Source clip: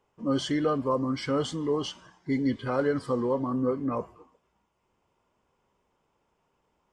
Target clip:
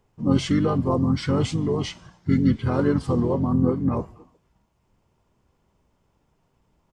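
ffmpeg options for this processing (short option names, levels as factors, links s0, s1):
-filter_complex "[0:a]bass=f=250:g=12,treble=f=4000:g=4,asplit=3[s0][s1][s2];[s1]asetrate=29433,aresample=44100,atempo=1.49831,volume=0.562[s3];[s2]asetrate=37084,aresample=44100,atempo=1.18921,volume=0.355[s4];[s0][s3][s4]amix=inputs=3:normalize=0"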